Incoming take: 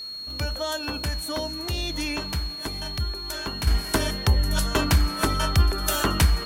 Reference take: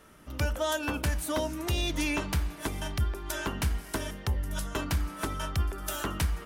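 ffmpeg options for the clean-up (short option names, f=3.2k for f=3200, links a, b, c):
-af "bandreject=f=4.3k:w=30,agate=range=-21dB:threshold=-26dB,asetnsamples=n=441:p=0,asendcmd='3.67 volume volume -9.5dB',volume=0dB"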